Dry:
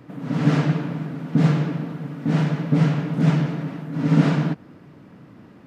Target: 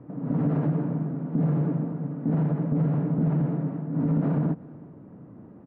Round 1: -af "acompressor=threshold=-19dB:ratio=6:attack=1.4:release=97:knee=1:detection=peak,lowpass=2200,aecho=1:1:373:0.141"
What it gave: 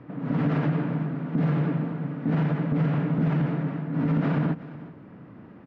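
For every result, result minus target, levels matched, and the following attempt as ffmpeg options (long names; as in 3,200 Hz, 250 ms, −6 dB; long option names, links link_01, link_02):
2,000 Hz band +11.5 dB; echo-to-direct +6 dB
-af "acompressor=threshold=-19dB:ratio=6:attack=1.4:release=97:knee=1:detection=peak,lowpass=800,aecho=1:1:373:0.141"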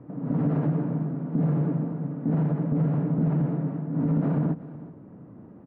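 echo-to-direct +6 dB
-af "acompressor=threshold=-19dB:ratio=6:attack=1.4:release=97:knee=1:detection=peak,lowpass=800,aecho=1:1:373:0.0708"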